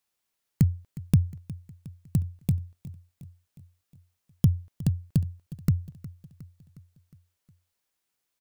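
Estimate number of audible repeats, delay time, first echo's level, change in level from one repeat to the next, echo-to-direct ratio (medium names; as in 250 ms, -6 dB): 4, 361 ms, -18.0 dB, -5.0 dB, -16.5 dB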